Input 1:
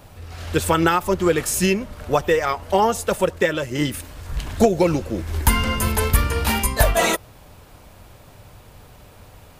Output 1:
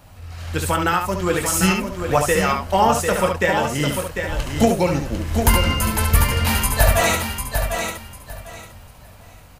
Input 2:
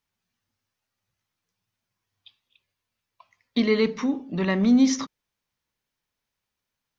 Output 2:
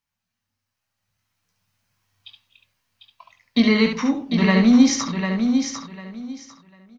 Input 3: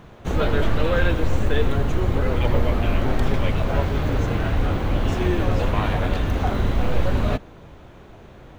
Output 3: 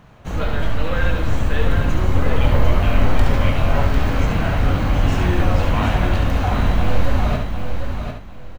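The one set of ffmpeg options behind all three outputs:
-filter_complex "[0:a]equalizer=f=390:w=2:g=-7.5,bandreject=f=3500:w=19,asplit=2[s0][s1];[s1]aecho=0:1:22|70:0.316|0.531[s2];[s0][s2]amix=inputs=2:normalize=0,dynaudnorm=f=130:g=21:m=4.22,asplit=2[s3][s4];[s4]aecho=0:1:748|1496|2244:0.473|0.0994|0.0209[s5];[s3][s5]amix=inputs=2:normalize=0,volume=0.794"

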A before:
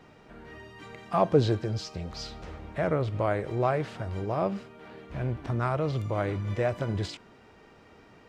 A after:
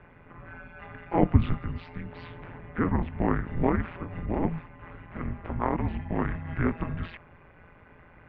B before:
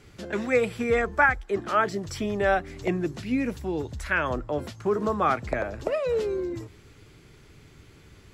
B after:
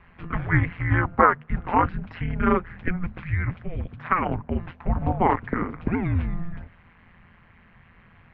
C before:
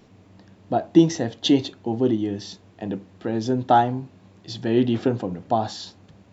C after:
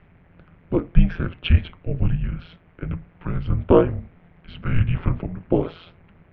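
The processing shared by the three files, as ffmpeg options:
-af "tremolo=f=170:d=0.857,aemphasis=mode=production:type=75kf,highpass=f=170:t=q:w=0.5412,highpass=f=170:t=q:w=1.307,lowpass=f=2700:t=q:w=0.5176,lowpass=f=2700:t=q:w=0.7071,lowpass=f=2700:t=q:w=1.932,afreqshift=-360,volume=1.88"

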